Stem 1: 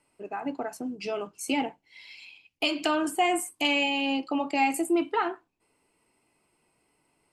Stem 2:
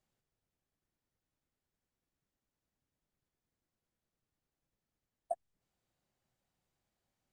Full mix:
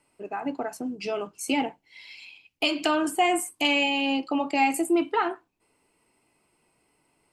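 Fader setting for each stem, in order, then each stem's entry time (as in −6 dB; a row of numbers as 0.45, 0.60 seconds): +2.0, −9.0 decibels; 0.00, 0.00 seconds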